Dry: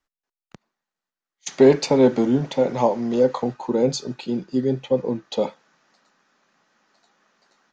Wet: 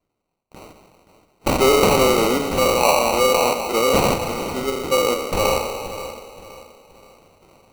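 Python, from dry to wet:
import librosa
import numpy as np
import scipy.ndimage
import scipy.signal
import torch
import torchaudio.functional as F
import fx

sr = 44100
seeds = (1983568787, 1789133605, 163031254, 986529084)

p1 = fx.spec_trails(x, sr, decay_s=1.55)
p2 = scipy.signal.sosfilt(scipy.signal.butter(2, 490.0, 'highpass', fs=sr, output='sos'), p1)
p3 = fx.high_shelf(p2, sr, hz=2400.0, db=6.5)
p4 = fx.level_steps(p3, sr, step_db=12)
p5 = p3 + (p4 * 10.0 ** (1.5 / 20.0))
p6 = fx.sample_hold(p5, sr, seeds[0], rate_hz=1700.0, jitter_pct=0)
p7 = p6 + fx.echo_feedback(p6, sr, ms=525, feedback_pct=36, wet_db=-13.0, dry=0)
y = p7 * 10.0 ** (-2.0 / 20.0)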